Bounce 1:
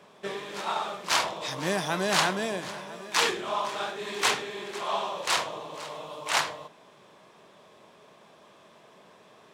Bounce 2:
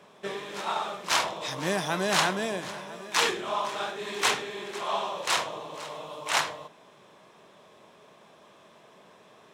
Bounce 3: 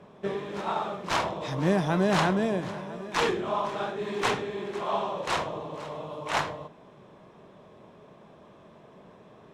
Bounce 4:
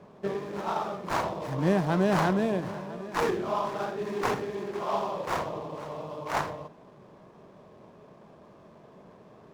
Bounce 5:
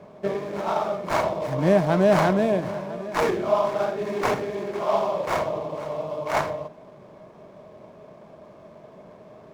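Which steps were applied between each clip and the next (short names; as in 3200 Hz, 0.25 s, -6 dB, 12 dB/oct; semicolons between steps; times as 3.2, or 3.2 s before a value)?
notch 4600 Hz, Q 20
tilt -3.5 dB/oct
median filter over 15 samples
small resonant body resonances 620/2200 Hz, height 9 dB, ringing for 40 ms; gain +3.5 dB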